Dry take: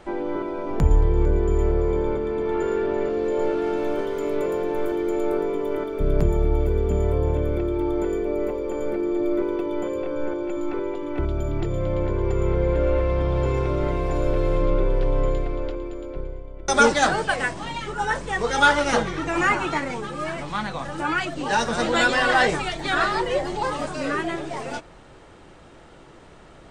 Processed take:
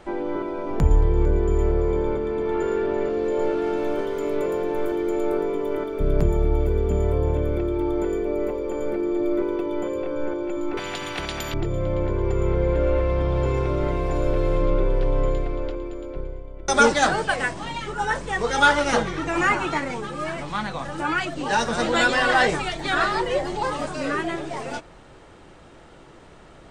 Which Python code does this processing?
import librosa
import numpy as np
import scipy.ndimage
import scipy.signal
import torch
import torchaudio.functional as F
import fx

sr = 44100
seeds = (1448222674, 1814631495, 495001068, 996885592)

y = fx.spectral_comp(x, sr, ratio=4.0, at=(10.77, 11.54))